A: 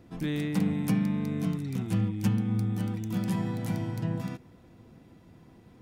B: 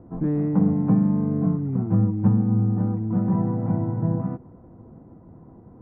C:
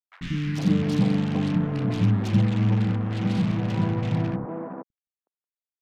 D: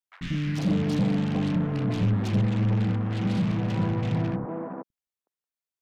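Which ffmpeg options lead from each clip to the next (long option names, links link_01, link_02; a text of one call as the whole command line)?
ffmpeg -i in.wav -af "lowpass=frequency=1100:width=0.5412,lowpass=frequency=1100:width=1.3066,volume=7.5dB" out.wav
ffmpeg -i in.wav -filter_complex "[0:a]acrusher=bits=4:mix=0:aa=0.5,acrossover=split=260|1300[link_01][link_02][link_03];[link_01]adelay=90[link_04];[link_02]adelay=460[link_05];[link_04][link_05][link_03]amix=inputs=3:normalize=0" out.wav
ffmpeg -i in.wav -af "asoftclip=type=tanh:threshold=-17dB" out.wav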